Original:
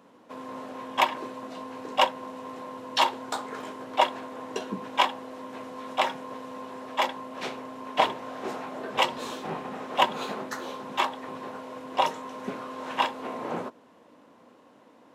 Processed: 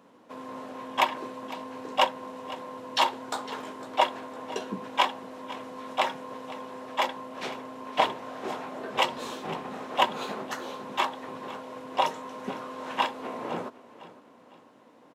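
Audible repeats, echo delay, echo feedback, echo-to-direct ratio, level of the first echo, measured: 3, 506 ms, 40%, -16.5 dB, -17.0 dB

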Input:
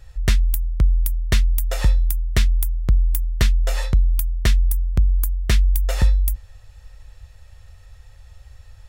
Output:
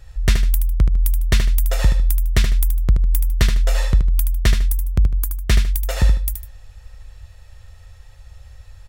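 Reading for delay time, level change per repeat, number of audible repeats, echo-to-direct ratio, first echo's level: 76 ms, -10.5 dB, 2, -6.5 dB, -7.0 dB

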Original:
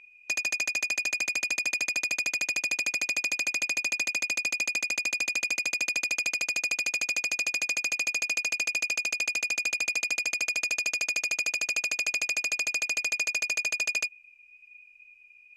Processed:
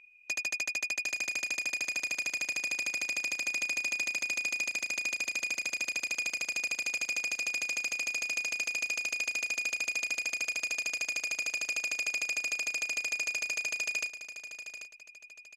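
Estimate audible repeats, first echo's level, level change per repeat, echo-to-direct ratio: 2, -11.0 dB, -9.0 dB, -10.5 dB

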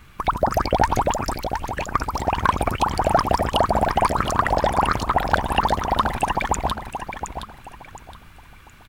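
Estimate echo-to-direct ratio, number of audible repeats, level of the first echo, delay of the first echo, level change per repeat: -7.5 dB, 3, -8.0 dB, 718 ms, -10.5 dB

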